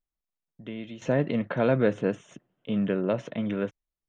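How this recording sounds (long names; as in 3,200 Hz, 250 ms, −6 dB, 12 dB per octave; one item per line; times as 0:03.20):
background noise floor −90 dBFS
spectral slope −5.5 dB per octave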